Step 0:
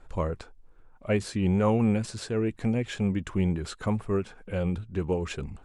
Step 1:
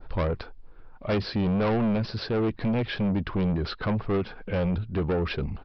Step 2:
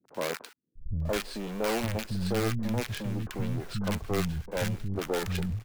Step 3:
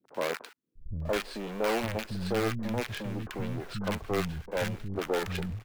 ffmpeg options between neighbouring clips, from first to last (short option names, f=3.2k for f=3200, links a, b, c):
-af "adynamicequalizer=threshold=0.00501:dfrequency=2600:dqfactor=0.77:tfrequency=2600:tqfactor=0.77:attack=5:release=100:ratio=0.375:range=2:mode=cutabove:tftype=bell,aresample=11025,asoftclip=type=tanh:threshold=-29dB,aresample=44100,volume=7.5dB"
-filter_complex "[0:a]acrossover=split=240[a][b];[b]acrusher=bits=5:dc=4:mix=0:aa=0.000001[c];[a][c]amix=inputs=2:normalize=0,acrossover=split=220|1100[d][e][f];[f]adelay=40[g];[d]adelay=750[h];[h][e][g]amix=inputs=3:normalize=0,volume=-2dB"
-af "bass=f=250:g=-6,treble=f=4k:g=-6,volume=1.5dB"